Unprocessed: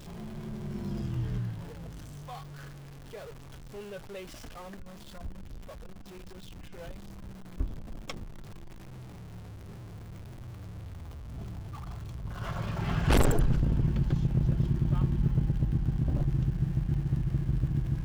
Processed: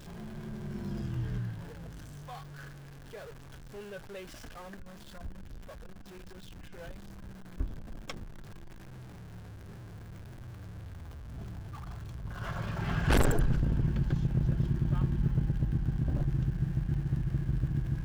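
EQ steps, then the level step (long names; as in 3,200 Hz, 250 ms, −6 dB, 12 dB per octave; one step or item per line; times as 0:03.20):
parametric band 1,600 Hz +6 dB 0.28 octaves
−2.0 dB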